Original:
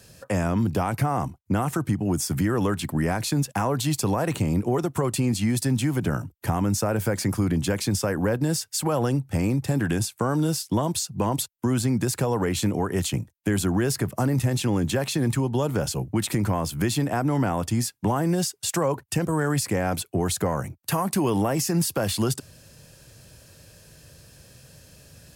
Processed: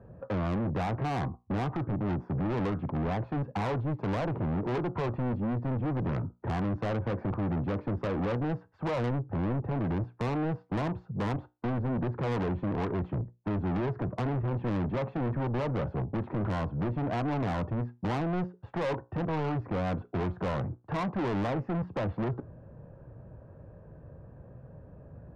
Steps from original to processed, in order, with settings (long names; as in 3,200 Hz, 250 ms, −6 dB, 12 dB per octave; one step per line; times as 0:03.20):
low-pass filter 1,100 Hz 24 dB per octave
tuned comb filter 60 Hz, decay 0.26 s, harmonics all, mix 40%
soft clipping −33.5 dBFS, distortion −6 dB
level +5.5 dB